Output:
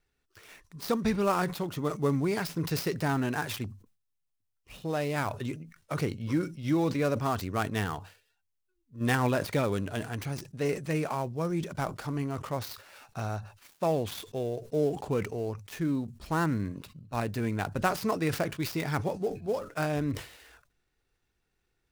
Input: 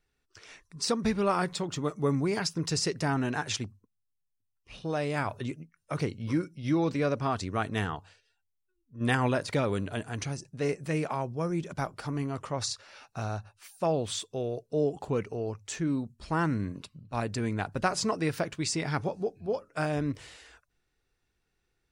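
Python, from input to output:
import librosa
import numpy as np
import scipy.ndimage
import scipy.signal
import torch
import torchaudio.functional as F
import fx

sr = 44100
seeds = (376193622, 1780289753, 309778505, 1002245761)

y = fx.dead_time(x, sr, dead_ms=0.075)
y = fx.sustainer(y, sr, db_per_s=130.0)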